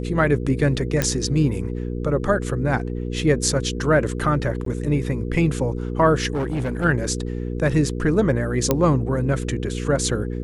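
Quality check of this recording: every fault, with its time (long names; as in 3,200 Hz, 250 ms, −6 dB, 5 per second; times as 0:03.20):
mains hum 60 Hz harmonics 8 −27 dBFS
0:01.02: click −5 dBFS
0:04.65–0:04.66: drop-out 13 ms
0:06.33–0:06.85: clipping −20 dBFS
0:08.71: click −4 dBFS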